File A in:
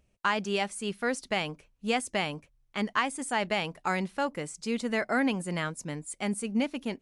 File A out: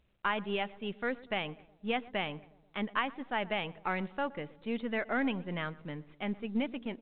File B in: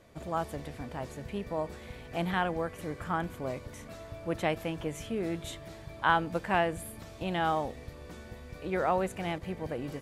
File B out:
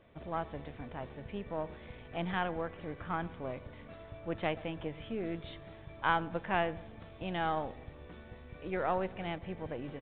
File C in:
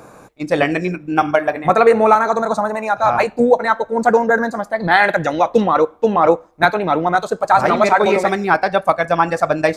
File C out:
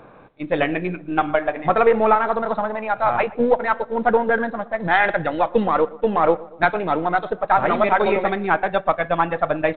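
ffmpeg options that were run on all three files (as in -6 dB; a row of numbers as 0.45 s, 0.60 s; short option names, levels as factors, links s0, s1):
-filter_complex "[0:a]aeval=exprs='if(lt(val(0),0),0.708*val(0),val(0))':c=same,asplit=2[s0][s1];[s1]adelay=120,lowpass=f=1300:p=1,volume=0.112,asplit=2[s2][s3];[s3]adelay=120,lowpass=f=1300:p=1,volume=0.53,asplit=2[s4][s5];[s5]adelay=120,lowpass=f=1300:p=1,volume=0.53,asplit=2[s6][s7];[s7]adelay=120,lowpass=f=1300:p=1,volume=0.53[s8];[s0][s2][s4][s6][s8]amix=inputs=5:normalize=0,volume=0.708" -ar 8000 -c:a pcm_mulaw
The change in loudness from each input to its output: -4.5 LU, -4.0 LU, -4.5 LU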